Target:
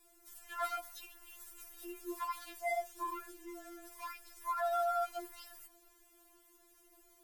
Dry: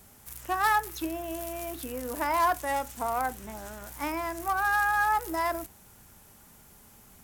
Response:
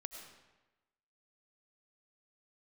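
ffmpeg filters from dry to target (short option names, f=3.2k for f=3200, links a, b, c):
-af "aeval=exprs='val(0)*sin(2*PI*130*n/s)':c=same,asoftclip=type=tanh:threshold=-20dB,afftfilt=real='re*4*eq(mod(b,16),0)':imag='im*4*eq(mod(b,16),0)':win_size=2048:overlap=0.75,volume=-5dB"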